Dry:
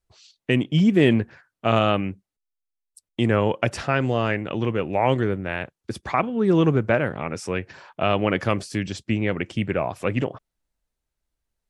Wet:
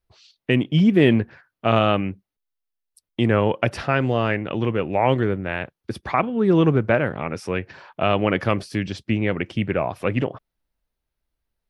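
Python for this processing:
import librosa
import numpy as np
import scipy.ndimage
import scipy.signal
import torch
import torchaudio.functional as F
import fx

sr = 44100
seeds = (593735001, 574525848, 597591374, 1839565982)

y = fx.peak_eq(x, sr, hz=7400.0, db=-11.5, octaves=0.6)
y = y * 10.0 ** (1.5 / 20.0)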